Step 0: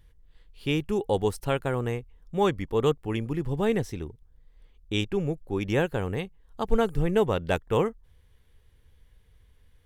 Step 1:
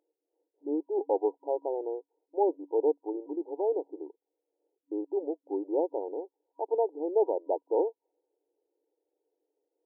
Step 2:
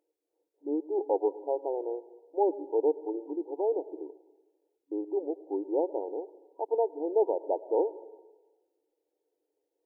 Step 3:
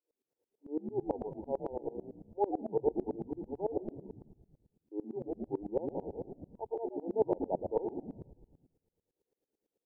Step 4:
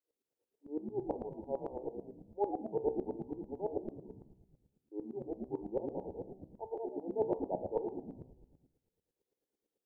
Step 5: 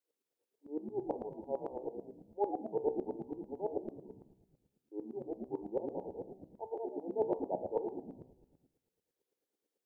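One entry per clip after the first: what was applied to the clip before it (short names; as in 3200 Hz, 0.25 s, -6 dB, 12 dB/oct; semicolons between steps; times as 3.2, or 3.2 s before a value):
low-pass opened by the level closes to 510 Hz, open at -20.5 dBFS; FFT band-pass 290–960 Hz; gain -1.5 dB
reverb RT60 1.2 s, pre-delay 92 ms, DRR 16.5 dB
on a send: frequency-shifting echo 0.119 s, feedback 54%, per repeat -87 Hz, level -6 dB; on the sum: dB-ramp tremolo swelling 9 Hz, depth 24 dB
de-hum 63.69 Hz, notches 18; gain -2 dB
low shelf 130 Hz -11 dB; gain +1 dB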